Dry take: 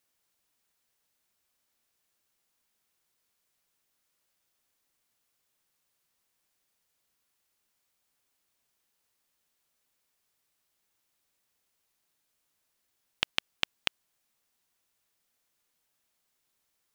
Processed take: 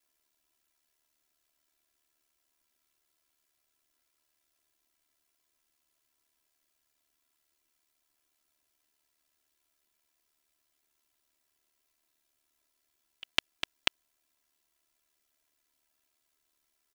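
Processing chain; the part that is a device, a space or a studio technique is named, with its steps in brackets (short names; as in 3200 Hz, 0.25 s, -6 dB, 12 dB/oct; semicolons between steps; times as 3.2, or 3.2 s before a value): ring-modulated robot voice (ring modulator 37 Hz; comb 3 ms, depth 95%)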